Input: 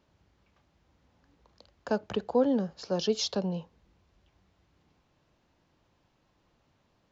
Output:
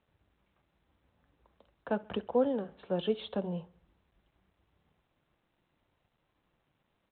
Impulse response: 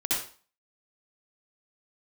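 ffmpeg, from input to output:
-filter_complex "[0:a]aemphasis=mode=reproduction:type=50fm,flanger=delay=1.5:depth=4.8:regen=-60:speed=0.82:shape=sinusoidal,asettb=1/sr,asplit=3[link_01][link_02][link_03];[link_01]atrim=end=1.904[link_04];[link_02]atrim=start=1.9:end=3.21,asetpts=PTS-STARTPTS,afade=type=in:duration=0.004:curve=qsin,afade=type=out:start_time=1.306:duration=0.004:curve=qsin,highshelf=frequency=3100:gain=5[link_05];[link_03]atrim=start=3.206[link_06];[link_04][link_05]acrossfade=duration=0.004:curve1=hsin:curve2=qsin[link_07];[link_07][link_06]acrossfade=duration=0.004:curve1=qsin:curve2=hsin,aecho=1:1:67|134|201|268:0.0708|0.0382|0.0206|0.0111,volume=1dB" -ar 8000 -c:a adpcm_g726 -b:a 40k

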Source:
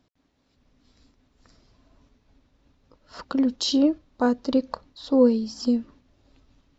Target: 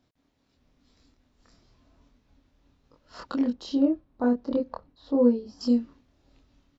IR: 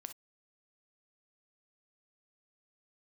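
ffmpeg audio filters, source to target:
-filter_complex "[0:a]asettb=1/sr,asplit=3[link_01][link_02][link_03];[link_01]atrim=end=3.504[link_04];[link_02]atrim=start=3.5:end=5.61,asetpts=PTS-STARTPTS,afade=type=in:duration=0.004:curve=qsin,afade=type=out:start_time=2.106:duration=0.004:curve=qsin,lowpass=frequency=1000:poles=1[link_05];[link_03]atrim=start=5.606[link_06];[link_04][link_05]acrossfade=duration=0.004:curve1=hsin:curve2=qsin[link_07];[link_07][link_06]acrossfade=duration=0.004:curve1=qsin:curve2=hsin,asplit=2[link_08][link_09];[link_09]adelay=25,volume=-2dB[link_10];[link_08][link_10]amix=inputs=2:normalize=0,volume=-4.5dB"

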